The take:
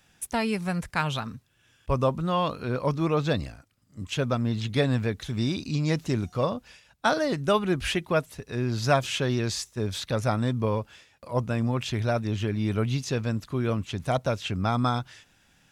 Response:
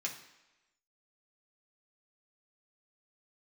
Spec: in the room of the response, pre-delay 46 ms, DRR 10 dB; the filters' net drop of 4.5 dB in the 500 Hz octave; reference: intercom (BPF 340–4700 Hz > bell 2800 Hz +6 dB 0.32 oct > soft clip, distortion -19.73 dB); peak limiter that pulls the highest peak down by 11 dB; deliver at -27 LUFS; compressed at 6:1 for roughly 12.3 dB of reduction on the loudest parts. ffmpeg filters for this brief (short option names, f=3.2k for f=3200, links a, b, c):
-filter_complex "[0:a]equalizer=f=500:t=o:g=-4.5,acompressor=threshold=-33dB:ratio=6,alimiter=level_in=7.5dB:limit=-24dB:level=0:latency=1,volume=-7.5dB,asplit=2[a][b];[1:a]atrim=start_sample=2205,adelay=46[c];[b][c]afir=irnorm=-1:irlink=0,volume=-11.5dB[d];[a][d]amix=inputs=2:normalize=0,highpass=340,lowpass=4.7k,equalizer=f=2.8k:t=o:w=0.32:g=6,asoftclip=threshold=-33dB,volume=18.5dB"